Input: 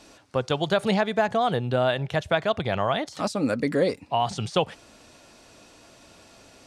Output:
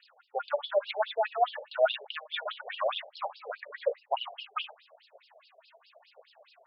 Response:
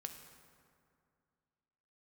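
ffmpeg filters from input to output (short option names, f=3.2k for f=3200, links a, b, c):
-filter_complex "[0:a]aphaser=in_gain=1:out_gain=1:delay=3.6:decay=0.72:speed=0.97:type=triangular[a];[1:a]atrim=start_sample=2205,atrim=end_sample=3969[b];[a][b]afir=irnorm=-1:irlink=0,afftfilt=real='re*between(b*sr/1024,560*pow(3900/560,0.5+0.5*sin(2*PI*4.8*pts/sr))/1.41,560*pow(3900/560,0.5+0.5*sin(2*PI*4.8*pts/sr))*1.41)':imag='im*between(b*sr/1024,560*pow(3900/560,0.5+0.5*sin(2*PI*4.8*pts/sr))/1.41,560*pow(3900/560,0.5+0.5*sin(2*PI*4.8*pts/sr))*1.41)':win_size=1024:overlap=0.75"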